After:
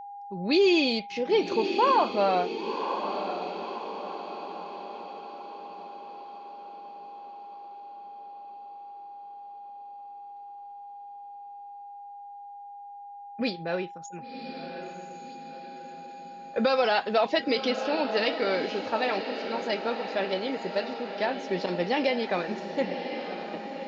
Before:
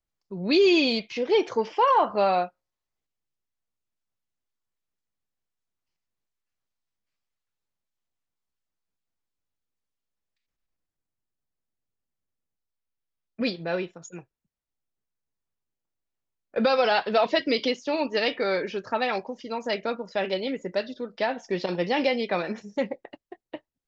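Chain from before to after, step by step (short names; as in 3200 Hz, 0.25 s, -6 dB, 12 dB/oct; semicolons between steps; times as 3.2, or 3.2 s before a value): whine 810 Hz -37 dBFS; diffused feedback echo 1.058 s, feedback 51%, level -8 dB; gain -2 dB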